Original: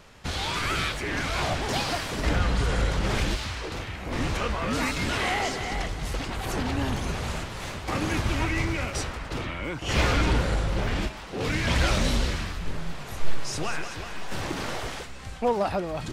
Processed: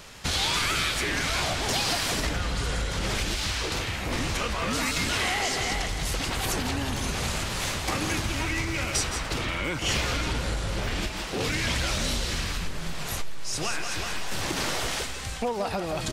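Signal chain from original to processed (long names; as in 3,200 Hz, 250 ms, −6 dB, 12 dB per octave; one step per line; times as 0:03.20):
single-tap delay 165 ms −11 dB
downward compressor 6 to 1, threshold −29 dBFS, peak gain reduction 15 dB
high-shelf EQ 2,800 Hz +10 dB
level +3 dB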